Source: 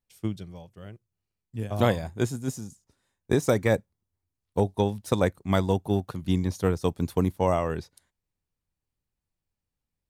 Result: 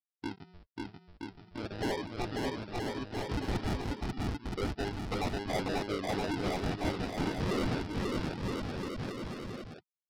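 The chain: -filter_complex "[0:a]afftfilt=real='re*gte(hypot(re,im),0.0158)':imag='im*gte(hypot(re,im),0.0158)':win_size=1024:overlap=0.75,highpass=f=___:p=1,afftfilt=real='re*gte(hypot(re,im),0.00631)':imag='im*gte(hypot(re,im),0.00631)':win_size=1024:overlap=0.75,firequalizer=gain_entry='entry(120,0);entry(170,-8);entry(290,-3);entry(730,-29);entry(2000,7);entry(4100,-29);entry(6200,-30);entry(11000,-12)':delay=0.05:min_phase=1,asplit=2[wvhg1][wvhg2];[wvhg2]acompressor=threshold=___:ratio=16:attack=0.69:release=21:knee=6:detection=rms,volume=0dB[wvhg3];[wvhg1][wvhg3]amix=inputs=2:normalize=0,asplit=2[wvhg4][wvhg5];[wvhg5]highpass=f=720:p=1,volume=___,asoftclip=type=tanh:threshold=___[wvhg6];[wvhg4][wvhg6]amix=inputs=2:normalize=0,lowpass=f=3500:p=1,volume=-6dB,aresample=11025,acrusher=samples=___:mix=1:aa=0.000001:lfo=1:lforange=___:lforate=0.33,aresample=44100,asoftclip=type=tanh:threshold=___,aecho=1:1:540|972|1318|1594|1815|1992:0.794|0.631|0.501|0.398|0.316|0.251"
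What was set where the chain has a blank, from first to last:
1300, -51dB, 25dB, -16dB, 14, 14, -29.5dB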